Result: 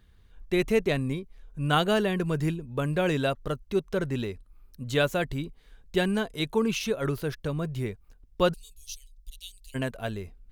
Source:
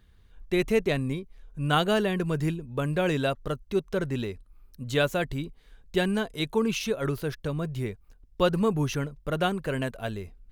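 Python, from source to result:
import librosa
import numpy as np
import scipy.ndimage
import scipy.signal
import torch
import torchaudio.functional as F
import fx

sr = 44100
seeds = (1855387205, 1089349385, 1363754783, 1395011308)

y = fx.cheby2_bandstop(x, sr, low_hz=130.0, high_hz=1600.0, order=4, stop_db=50, at=(8.52, 9.74), fade=0.02)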